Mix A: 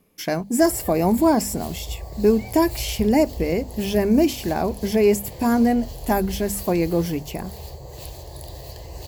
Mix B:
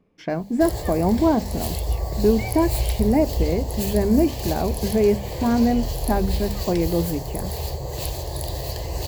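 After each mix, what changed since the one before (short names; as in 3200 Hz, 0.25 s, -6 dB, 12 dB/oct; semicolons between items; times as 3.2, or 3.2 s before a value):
speech: add tape spacing loss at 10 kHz 29 dB; background +8.5 dB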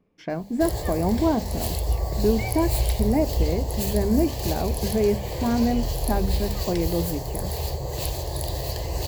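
speech -3.5 dB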